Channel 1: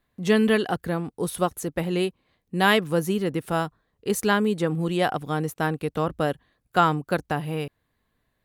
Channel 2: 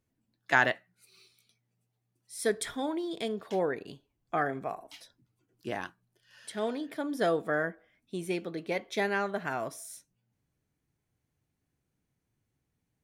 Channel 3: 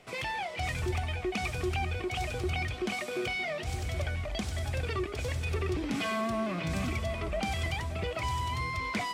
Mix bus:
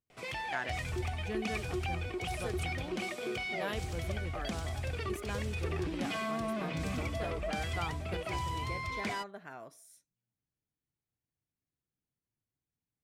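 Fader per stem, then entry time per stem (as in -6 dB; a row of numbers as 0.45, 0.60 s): -20.0, -13.5, -4.0 dB; 1.00, 0.00, 0.10 s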